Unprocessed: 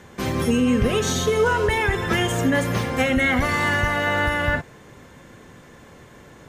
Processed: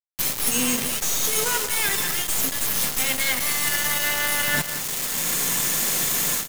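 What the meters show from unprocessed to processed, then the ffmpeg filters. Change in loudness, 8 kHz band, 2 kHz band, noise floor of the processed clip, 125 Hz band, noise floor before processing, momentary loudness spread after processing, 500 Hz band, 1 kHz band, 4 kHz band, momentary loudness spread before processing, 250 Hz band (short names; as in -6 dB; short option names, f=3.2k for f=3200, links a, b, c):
0.0 dB, +13.0 dB, -3.0 dB, -32 dBFS, -12.5 dB, -47 dBFS, 2 LU, -11.0 dB, -6.5 dB, +5.0 dB, 4 LU, -10.5 dB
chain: -af "aeval=exprs='0.355*(cos(1*acos(clip(val(0)/0.355,-1,1)))-cos(1*PI/2))+0.0562*(cos(2*acos(clip(val(0)/0.355,-1,1)))-cos(2*PI/2))':c=same,lowshelf=f=120:t=q:w=3:g=-8,dynaudnorm=f=300:g=3:m=14.5dB,alimiter=limit=-10dB:level=0:latency=1:release=175,aemphasis=mode=production:type=50kf,crystalizer=i=9:c=0,aeval=exprs='(tanh(1.26*val(0)+0.6)-tanh(0.6))/1.26':c=same,bandreject=f=57.47:t=h:w=4,bandreject=f=114.94:t=h:w=4,bandreject=f=172.41:t=h:w=4,bandreject=f=229.88:t=h:w=4,bandreject=f=287.35:t=h:w=4,bandreject=f=344.82:t=h:w=4,bandreject=f=402.29:t=h:w=4,bandreject=f=459.76:t=h:w=4,bandreject=f=517.23:t=h:w=4,bandreject=f=574.7:t=h:w=4,areverse,acompressor=threshold=-20dB:ratio=12,areverse,acrusher=bits=3:mix=0:aa=0.000001,bandreject=f=1.5k:w=27,aecho=1:1:181:0.251"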